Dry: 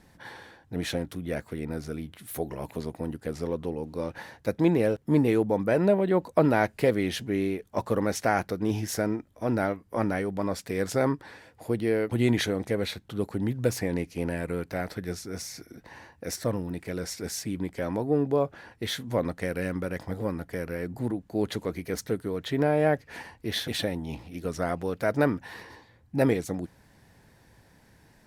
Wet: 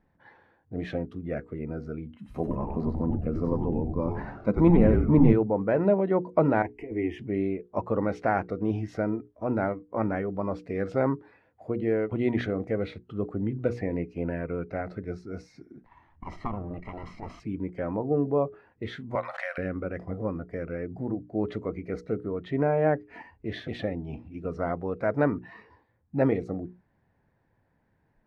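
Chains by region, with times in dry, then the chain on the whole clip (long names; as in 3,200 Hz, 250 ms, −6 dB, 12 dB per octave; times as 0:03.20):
0:02.16–0:05.33: hollow resonant body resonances 210/1,000 Hz, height 10 dB, ringing for 35 ms + echo with shifted repeats 93 ms, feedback 47%, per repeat −150 Hz, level −3 dB
0:06.62–0:07.19: compressor whose output falls as the input rises −25 dBFS, ratio −0.5 + parametric band 1,400 Hz −10 dB 0.52 octaves + phaser with its sweep stopped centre 840 Hz, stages 8
0:15.86–0:17.40: lower of the sound and its delayed copy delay 0.97 ms + high-shelf EQ 7,300 Hz −9.5 dB + transient designer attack +3 dB, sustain +7 dB
0:19.15–0:19.58: linear-phase brick-wall high-pass 520 Hz + tilt shelving filter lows −9 dB, about 690 Hz + background raised ahead of every attack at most 73 dB per second
whole clip: mains-hum notches 60/120/180/240/300/360/420/480 Hz; noise reduction from a noise print of the clip's start 11 dB; low-pass filter 1,700 Hz 12 dB per octave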